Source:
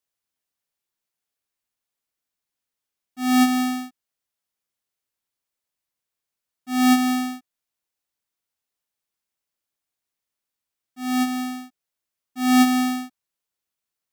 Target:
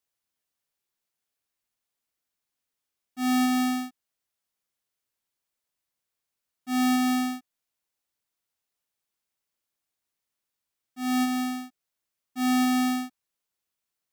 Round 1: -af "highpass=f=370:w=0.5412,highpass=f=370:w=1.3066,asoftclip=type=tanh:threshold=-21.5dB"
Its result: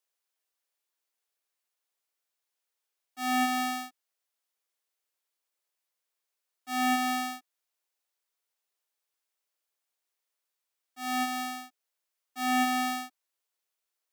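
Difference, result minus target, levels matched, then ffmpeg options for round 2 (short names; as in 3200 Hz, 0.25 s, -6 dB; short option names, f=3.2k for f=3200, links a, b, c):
500 Hz band +5.0 dB
-af "asoftclip=type=tanh:threshold=-21.5dB"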